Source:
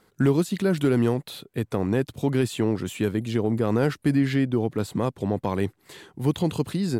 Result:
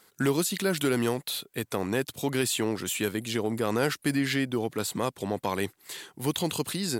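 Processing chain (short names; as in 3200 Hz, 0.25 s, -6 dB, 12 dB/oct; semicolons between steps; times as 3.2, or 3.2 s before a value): tilt +3 dB/oct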